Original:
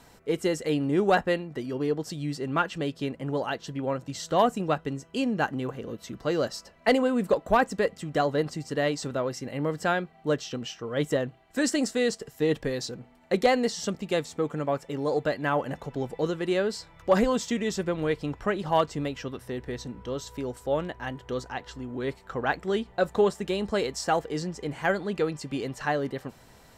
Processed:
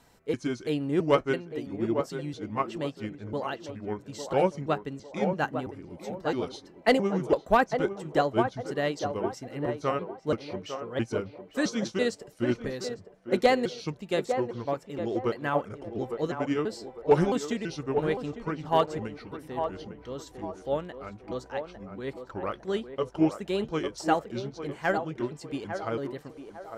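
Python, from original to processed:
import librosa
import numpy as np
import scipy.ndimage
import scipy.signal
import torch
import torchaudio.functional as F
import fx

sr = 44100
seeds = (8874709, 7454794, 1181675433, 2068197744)

y = fx.pitch_trill(x, sr, semitones=-4.5, every_ms=333)
y = fx.echo_banded(y, sr, ms=853, feedback_pct=50, hz=630.0, wet_db=-4.0)
y = fx.upward_expand(y, sr, threshold_db=-32.0, expansion=1.5)
y = F.gain(torch.from_numpy(y), 1.5).numpy()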